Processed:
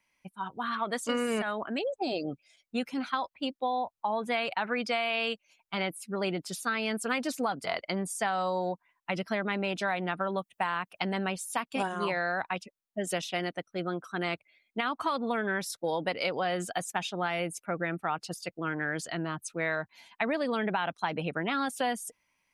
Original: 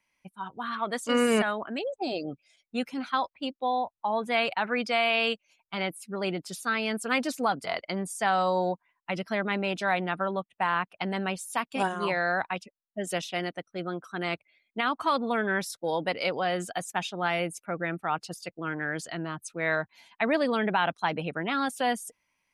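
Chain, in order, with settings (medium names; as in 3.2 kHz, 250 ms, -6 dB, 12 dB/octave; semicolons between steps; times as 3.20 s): 10.29–11.10 s: treble shelf 5.1 kHz +10 dB; compression, threshold -27 dBFS, peak gain reduction 8 dB; trim +1 dB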